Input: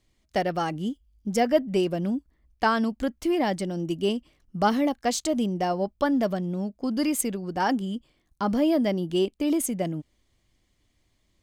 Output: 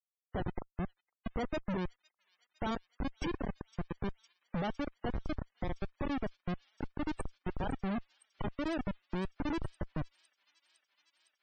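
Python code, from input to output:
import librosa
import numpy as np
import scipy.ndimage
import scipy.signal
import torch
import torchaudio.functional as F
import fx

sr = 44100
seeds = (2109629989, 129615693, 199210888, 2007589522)

p1 = fx.gate_flip(x, sr, shuts_db=-22.0, range_db=-24)
p2 = fx.schmitt(p1, sr, flips_db=-43.5)
p3 = fx.spec_topn(p2, sr, count=64)
p4 = p3 + fx.echo_wet_highpass(p3, sr, ms=508, feedback_pct=83, hz=4600.0, wet_db=-13, dry=0)
y = F.gain(torch.from_numpy(p4), 11.0).numpy()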